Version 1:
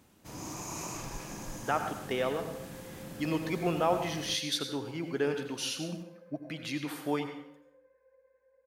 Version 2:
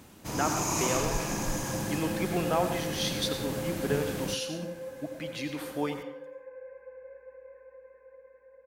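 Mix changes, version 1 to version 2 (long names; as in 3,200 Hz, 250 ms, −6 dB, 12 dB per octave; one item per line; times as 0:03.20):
speech: entry −1.30 s
first sound +10.0 dB
second sound +12.0 dB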